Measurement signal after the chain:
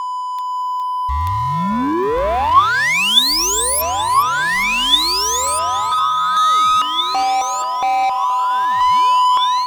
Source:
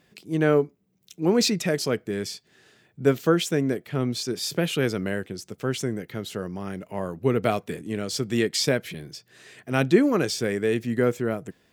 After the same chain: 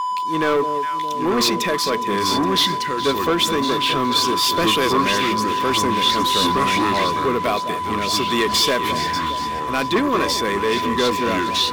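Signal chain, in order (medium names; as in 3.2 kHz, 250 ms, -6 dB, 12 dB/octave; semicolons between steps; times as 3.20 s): treble shelf 3.6 kHz +5.5 dB; ever faster or slower copies 785 ms, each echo -4 st, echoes 3, each echo -6 dB; whistle 1 kHz -27 dBFS; ten-band graphic EQ 125 Hz -11 dB, 2 kHz +4 dB, 4 kHz +3 dB, 8 kHz -5 dB; in parallel at -4 dB: crossover distortion -39 dBFS; on the sum: echo whose repeats swap between lows and highs 206 ms, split 870 Hz, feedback 75%, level -13 dB; level rider gain up to 8.5 dB; waveshaping leveller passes 3; small resonant body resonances 1.1/3.5 kHz, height 13 dB, ringing for 45 ms; trim -11.5 dB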